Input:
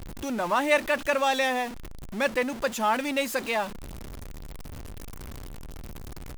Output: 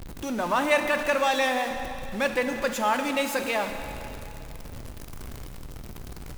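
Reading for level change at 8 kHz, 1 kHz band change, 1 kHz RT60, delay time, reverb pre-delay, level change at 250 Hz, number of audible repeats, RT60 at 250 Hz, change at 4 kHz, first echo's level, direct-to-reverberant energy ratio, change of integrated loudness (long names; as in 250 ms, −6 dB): +1.0 dB, +1.0 dB, 2.9 s, no echo audible, 7 ms, +1.0 dB, no echo audible, 2.8 s, +1.0 dB, no echo audible, 6.0 dB, +0.5 dB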